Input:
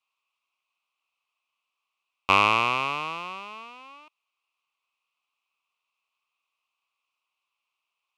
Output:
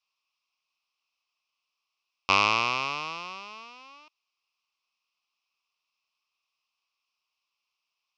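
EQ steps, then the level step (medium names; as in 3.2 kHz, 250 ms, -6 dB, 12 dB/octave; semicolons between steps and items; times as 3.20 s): resonant low-pass 5.3 kHz, resonance Q 5.5; -4.0 dB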